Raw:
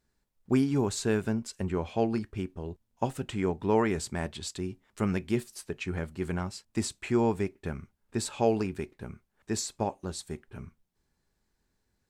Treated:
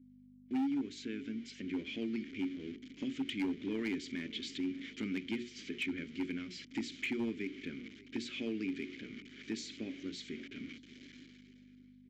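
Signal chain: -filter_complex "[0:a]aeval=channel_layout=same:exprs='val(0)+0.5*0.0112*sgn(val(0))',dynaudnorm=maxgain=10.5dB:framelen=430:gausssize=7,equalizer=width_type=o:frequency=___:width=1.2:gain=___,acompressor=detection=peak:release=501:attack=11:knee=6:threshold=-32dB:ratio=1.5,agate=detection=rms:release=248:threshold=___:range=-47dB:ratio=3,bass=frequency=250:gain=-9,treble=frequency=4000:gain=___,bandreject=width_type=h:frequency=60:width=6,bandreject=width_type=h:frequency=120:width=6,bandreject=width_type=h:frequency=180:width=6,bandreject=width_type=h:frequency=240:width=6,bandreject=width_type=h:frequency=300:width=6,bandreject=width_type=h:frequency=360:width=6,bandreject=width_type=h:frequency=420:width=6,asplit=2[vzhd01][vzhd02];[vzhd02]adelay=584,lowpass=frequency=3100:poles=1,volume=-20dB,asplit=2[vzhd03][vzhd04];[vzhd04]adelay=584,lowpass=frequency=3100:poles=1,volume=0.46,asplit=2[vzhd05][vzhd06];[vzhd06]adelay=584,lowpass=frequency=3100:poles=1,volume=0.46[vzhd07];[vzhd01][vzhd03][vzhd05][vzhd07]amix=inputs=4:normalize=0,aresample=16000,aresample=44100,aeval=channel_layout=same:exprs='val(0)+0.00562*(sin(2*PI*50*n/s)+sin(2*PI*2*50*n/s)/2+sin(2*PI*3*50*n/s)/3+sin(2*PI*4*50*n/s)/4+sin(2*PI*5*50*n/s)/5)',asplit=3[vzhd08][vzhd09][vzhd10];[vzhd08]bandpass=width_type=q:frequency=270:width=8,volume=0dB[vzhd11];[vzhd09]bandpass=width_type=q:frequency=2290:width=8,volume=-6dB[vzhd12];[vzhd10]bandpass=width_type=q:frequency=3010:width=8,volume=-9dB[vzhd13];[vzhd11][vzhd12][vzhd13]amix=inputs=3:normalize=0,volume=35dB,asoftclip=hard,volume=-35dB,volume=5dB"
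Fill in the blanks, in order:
700, -6.5, -35dB, 2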